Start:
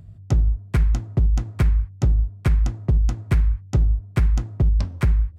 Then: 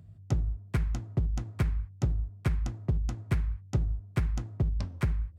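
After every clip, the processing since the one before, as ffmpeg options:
-af "highpass=65,volume=-7dB"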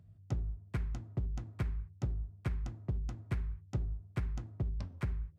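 -af "highshelf=f=6k:g=-6.5,bandreject=f=77.76:t=h:w=4,bandreject=f=155.52:t=h:w=4,bandreject=f=233.28:t=h:w=4,bandreject=f=311.04:t=h:w=4,bandreject=f=388.8:t=h:w=4,volume=-7dB"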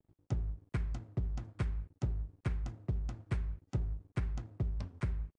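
-af "aeval=exprs='sgn(val(0))*max(abs(val(0))-0.00168,0)':c=same,volume=1dB" -ar 22050 -c:a aac -b:a 48k

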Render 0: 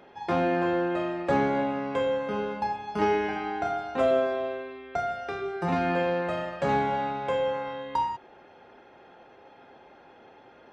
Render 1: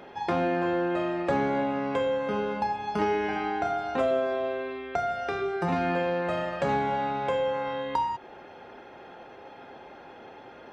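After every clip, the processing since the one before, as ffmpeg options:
-af "acompressor=threshold=-35dB:ratio=2,volume=6dB"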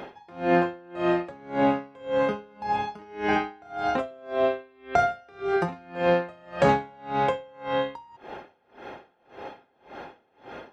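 -af "aeval=exprs='val(0)*pow(10,-31*(0.5-0.5*cos(2*PI*1.8*n/s))/20)':c=same,volume=8.5dB"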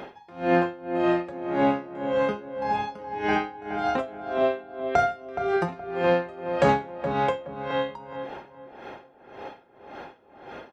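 -filter_complex "[0:a]asplit=2[a][b];[b]adelay=421,lowpass=f=1.6k:p=1,volume=-8dB,asplit=2[c][d];[d]adelay=421,lowpass=f=1.6k:p=1,volume=0.31,asplit=2[e][f];[f]adelay=421,lowpass=f=1.6k:p=1,volume=0.31,asplit=2[g][h];[h]adelay=421,lowpass=f=1.6k:p=1,volume=0.31[i];[a][c][e][g][i]amix=inputs=5:normalize=0"

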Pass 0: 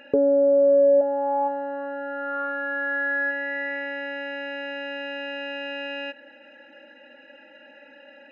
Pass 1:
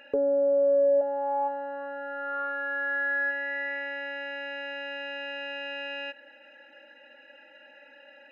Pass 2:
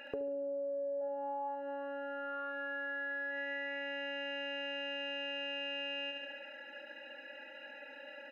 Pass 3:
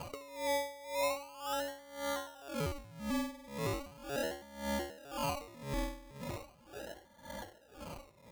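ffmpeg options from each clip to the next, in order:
-af "equalizer=f=160:t=o:w=2.3:g=-12,volume=-2dB"
-af "alimiter=limit=-24dB:level=0:latency=1:release=37,aecho=1:1:71|142|213|284|355|426|497:0.501|0.276|0.152|0.0834|0.0459|0.0252|0.0139,acompressor=threshold=-39dB:ratio=6,volume=1.5dB"
-af "aeval=exprs='val(0)+0.000562*(sin(2*PI*60*n/s)+sin(2*PI*2*60*n/s)/2+sin(2*PI*3*60*n/s)/3+sin(2*PI*4*60*n/s)/4+sin(2*PI*5*60*n/s)/5)':c=same,acrusher=samples=24:mix=1:aa=0.000001:lfo=1:lforange=14.4:lforate=0.38,aeval=exprs='val(0)*pow(10,-21*(0.5-0.5*cos(2*PI*1.9*n/s))/20)':c=same,volume=6.5dB"

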